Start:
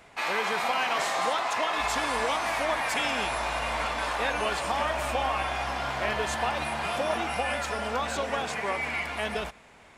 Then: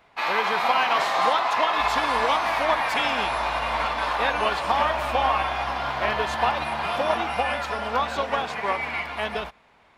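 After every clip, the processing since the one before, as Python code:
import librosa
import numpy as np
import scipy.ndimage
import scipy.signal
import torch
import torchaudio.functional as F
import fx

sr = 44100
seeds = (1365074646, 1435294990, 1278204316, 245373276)

y = fx.graphic_eq(x, sr, hz=(1000, 4000, 8000), db=(5, 4, -10))
y = fx.upward_expand(y, sr, threshold_db=-42.0, expansion=1.5)
y = y * 10.0 ** (4.0 / 20.0)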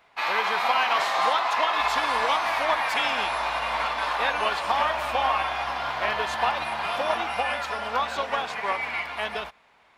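y = fx.low_shelf(x, sr, hz=440.0, db=-8.5)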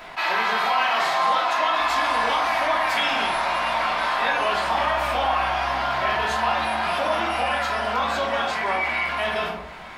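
y = fx.room_shoebox(x, sr, seeds[0], volume_m3=370.0, walls='furnished', distance_m=2.9)
y = fx.env_flatten(y, sr, amount_pct=50)
y = y * 10.0 ** (-5.5 / 20.0)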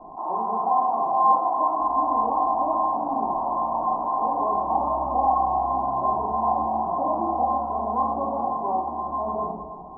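y = scipy.signal.sosfilt(scipy.signal.cheby1(6, 9, 1100.0, 'lowpass', fs=sr, output='sos'), x)
y = y + 10.0 ** (-14.5 / 20.0) * np.pad(y, (int(316 * sr / 1000.0), 0))[:len(y)]
y = y * 10.0 ** (5.0 / 20.0)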